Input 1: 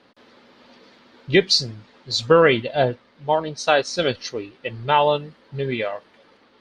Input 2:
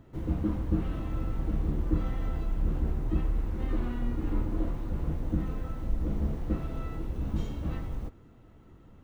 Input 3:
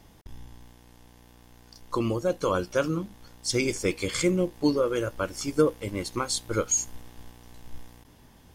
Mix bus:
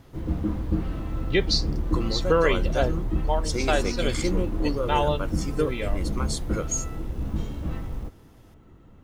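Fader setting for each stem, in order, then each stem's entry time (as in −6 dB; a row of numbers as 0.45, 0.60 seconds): −7.0, +2.5, −4.0 decibels; 0.00, 0.00, 0.00 seconds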